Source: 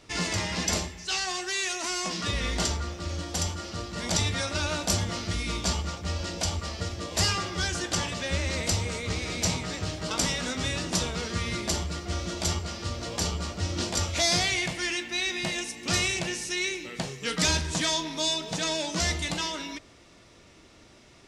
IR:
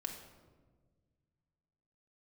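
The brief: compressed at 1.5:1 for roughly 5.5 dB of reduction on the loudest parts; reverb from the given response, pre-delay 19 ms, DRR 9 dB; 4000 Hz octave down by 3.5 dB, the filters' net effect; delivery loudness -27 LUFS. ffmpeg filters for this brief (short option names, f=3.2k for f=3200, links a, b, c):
-filter_complex "[0:a]equalizer=f=4k:t=o:g=-4.5,acompressor=threshold=-38dB:ratio=1.5,asplit=2[a][b];[1:a]atrim=start_sample=2205,adelay=19[c];[b][c]afir=irnorm=-1:irlink=0,volume=-8dB[d];[a][d]amix=inputs=2:normalize=0,volume=7dB"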